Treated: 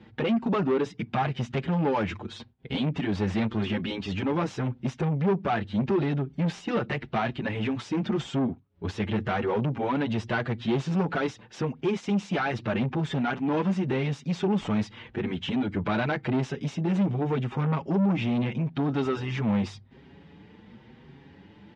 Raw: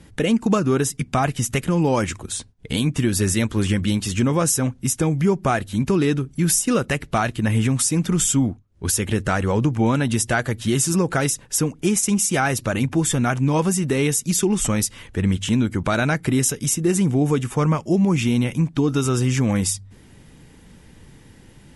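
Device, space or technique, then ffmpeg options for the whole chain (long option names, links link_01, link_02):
barber-pole flanger into a guitar amplifier: -filter_complex "[0:a]asplit=2[link_01][link_02];[link_02]adelay=6.2,afreqshift=0.87[link_03];[link_01][link_03]amix=inputs=2:normalize=1,asoftclip=type=tanh:threshold=-23dB,highpass=93,equalizer=frequency=210:width_type=q:width=4:gain=4,equalizer=frequency=390:width_type=q:width=4:gain=4,equalizer=frequency=840:width_type=q:width=4:gain=5,lowpass=frequency=3800:width=0.5412,lowpass=frequency=3800:width=1.3066"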